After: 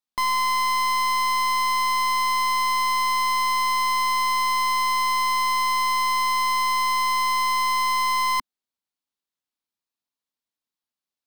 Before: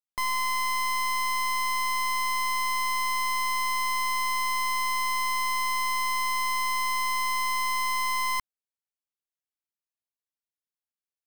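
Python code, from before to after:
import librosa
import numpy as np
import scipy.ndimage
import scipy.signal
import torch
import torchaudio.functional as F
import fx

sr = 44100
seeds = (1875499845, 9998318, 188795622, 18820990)

y = fx.graphic_eq(x, sr, hz=(250, 1000, 4000), db=(9, 6, 7))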